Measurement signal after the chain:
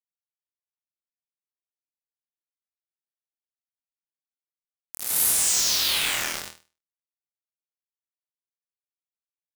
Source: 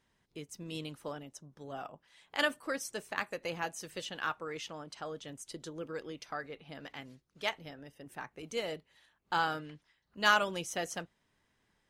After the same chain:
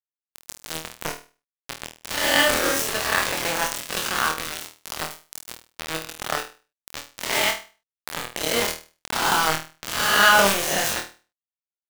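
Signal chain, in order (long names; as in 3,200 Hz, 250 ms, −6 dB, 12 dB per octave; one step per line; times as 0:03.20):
peak hold with a rise ahead of every peak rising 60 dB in 1.41 s
bit reduction 5 bits
transient designer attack +6 dB, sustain +10 dB
flutter between parallel walls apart 4.3 metres, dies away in 0.34 s
level +4.5 dB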